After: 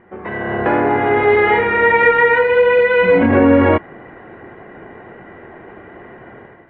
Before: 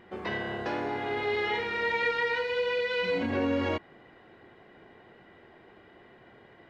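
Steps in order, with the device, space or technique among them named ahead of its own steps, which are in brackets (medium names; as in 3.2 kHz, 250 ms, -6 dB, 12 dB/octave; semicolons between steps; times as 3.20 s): action camera in a waterproof case (low-pass 2.1 kHz 24 dB/octave; level rider gain up to 12 dB; trim +5.5 dB; AAC 48 kbps 48 kHz)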